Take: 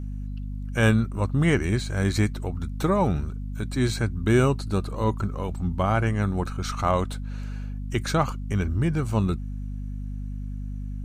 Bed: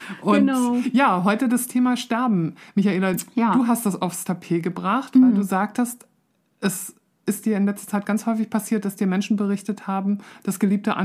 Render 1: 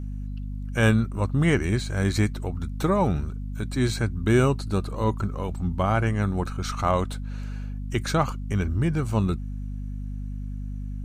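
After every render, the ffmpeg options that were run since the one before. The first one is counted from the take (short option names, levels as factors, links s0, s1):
-af anull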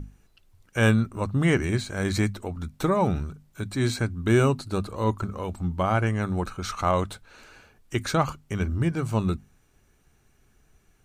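-af "bandreject=f=50:t=h:w=6,bandreject=f=100:t=h:w=6,bandreject=f=150:t=h:w=6,bandreject=f=200:t=h:w=6,bandreject=f=250:t=h:w=6"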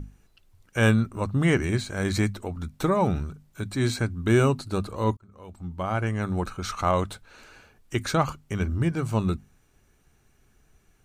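-filter_complex "[0:a]asplit=2[s0][s1];[s0]atrim=end=5.17,asetpts=PTS-STARTPTS,afade=t=out:st=5.166:d=0.004:c=hsin[s2];[s1]atrim=start=5.17,asetpts=PTS-STARTPTS,afade=t=in:d=1.19[s3];[s2][s3]concat=n=2:v=0:a=1"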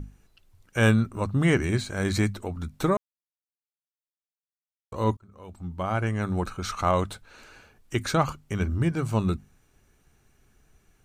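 -filter_complex "[0:a]asplit=3[s0][s1][s2];[s0]atrim=end=2.97,asetpts=PTS-STARTPTS,afade=t=out:st=2.966:d=0.004:c=hsin[s3];[s1]atrim=start=2.97:end=4.92,asetpts=PTS-STARTPTS,volume=0[s4];[s2]atrim=start=4.92,asetpts=PTS-STARTPTS,afade=t=in:d=0.004:c=hsin[s5];[s3][s4][s5]concat=n=3:v=0:a=1"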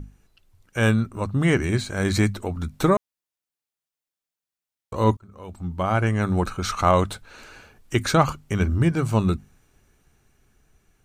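-af "dynaudnorm=f=280:g=13:m=1.88"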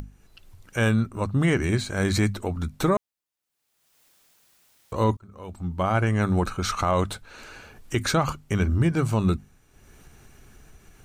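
-af "acompressor=mode=upward:threshold=0.0126:ratio=2.5,alimiter=limit=0.237:level=0:latency=1:release=67"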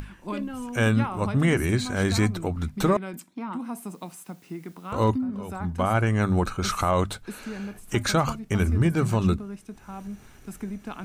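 -filter_complex "[1:a]volume=0.188[s0];[0:a][s0]amix=inputs=2:normalize=0"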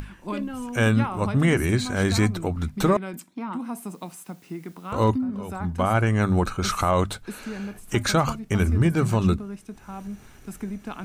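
-af "volume=1.19"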